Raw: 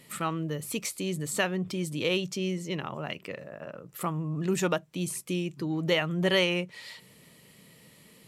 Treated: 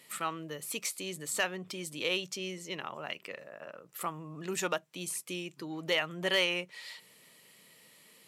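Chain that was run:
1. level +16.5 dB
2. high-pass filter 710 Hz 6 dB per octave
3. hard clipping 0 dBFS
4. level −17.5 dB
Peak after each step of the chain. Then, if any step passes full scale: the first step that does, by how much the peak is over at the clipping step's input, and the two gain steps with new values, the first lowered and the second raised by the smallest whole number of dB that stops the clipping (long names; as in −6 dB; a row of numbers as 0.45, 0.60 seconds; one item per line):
+4.5, +4.5, 0.0, −17.5 dBFS
step 1, 4.5 dB
step 1 +11.5 dB, step 4 −12.5 dB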